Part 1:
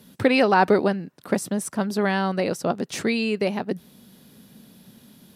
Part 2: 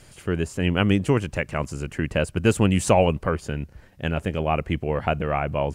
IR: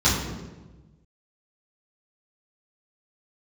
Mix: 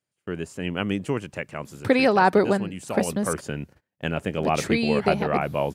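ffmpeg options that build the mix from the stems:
-filter_complex "[0:a]bandreject=f=2.8k:w=12,adelay=1650,volume=-0.5dB,asplit=3[a][b][c];[a]atrim=end=3.41,asetpts=PTS-STARTPTS,afade=t=out:st=3.406:d=0.004:c=hsin[d];[b]atrim=start=3.41:end=4.38,asetpts=PTS-STARTPTS,volume=0[e];[c]atrim=start=4.38,asetpts=PTS-STARTPTS,afade=t=in:d=0.004:c=hsin[f];[d][e][f]concat=n=3:v=0:a=1[g];[1:a]agate=range=-29dB:threshold=-39dB:ratio=16:detection=peak,highpass=140,volume=8dB,afade=t=out:st=1.41:d=0.74:silence=0.398107,afade=t=in:st=2.99:d=0.48:silence=0.223872[h];[g][h]amix=inputs=2:normalize=0"

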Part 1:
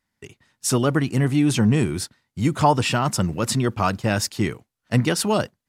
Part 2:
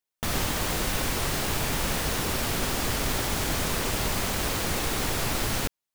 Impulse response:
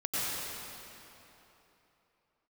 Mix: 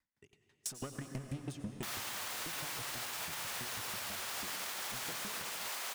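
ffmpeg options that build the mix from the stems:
-filter_complex "[0:a]acompressor=threshold=-22dB:ratio=5,volume=24dB,asoftclip=hard,volume=-24dB,aeval=exprs='val(0)*pow(10,-36*if(lt(mod(6.1*n/s,1),2*abs(6.1)/1000),1-mod(6.1*n/s,1)/(2*abs(6.1)/1000),(mod(6.1*n/s,1)-2*abs(6.1)/1000)/(1-2*abs(6.1)/1000))/20)':c=same,volume=-6.5dB,asplit=2[a][b];[b]volume=-13dB[c];[1:a]highpass=830,adelay=1600,volume=0.5dB[d];[2:a]atrim=start_sample=2205[e];[c][e]afir=irnorm=-1:irlink=0[f];[a][d][f]amix=inputs=3:normalize=0,alimiter=level_in=7dB:limit=-24dB:level=0:latency=1:release=295,volume=-7dB"

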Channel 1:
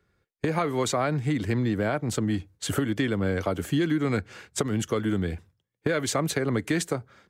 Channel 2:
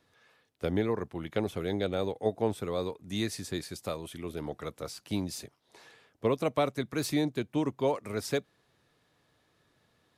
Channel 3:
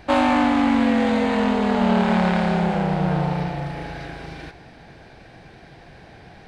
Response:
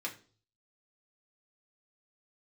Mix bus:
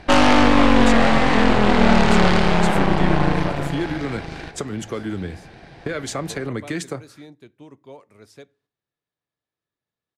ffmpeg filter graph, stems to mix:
-filter_complex "[0:a]volume=-2.5dB,asplit=2[a][b];[b]volume=-12.5dB[c];[1:a]agate=range=-7dB:threshold=-57dB:ratio=16:detection=peak,adelay=50,volume=-14.5dB,asplit=2[d][e];[e]volume=-15dB[f];[2:a]aeval=exprs='0.562*(cos(1*acos(clip(val(0)/0.562,-1,1)))-cos(1*PI/2))+0.141*(cos(8*acos(clip(val(0)/0.562,-1,1)))-cos(8*PI/2))':c=same,volume=1.5dB[g];[3:a]atrim=start_sample=2205[h];[c][f]amix=inputs=2:normalize=0[i];[i][h]afir=irnorm=-1:irlink=0[j];[a][d][g][j]amix=inputs=4:normalize=0,lowpass=11k"

